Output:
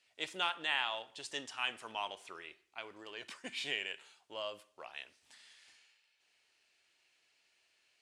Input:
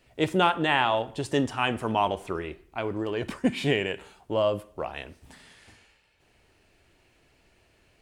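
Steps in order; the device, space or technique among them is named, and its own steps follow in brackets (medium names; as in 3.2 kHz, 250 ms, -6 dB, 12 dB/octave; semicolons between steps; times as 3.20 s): piezo pickup straight into a mixer (low-pass 5.2 kHz 12 dB/octave; differentiator); trim +2.5 dB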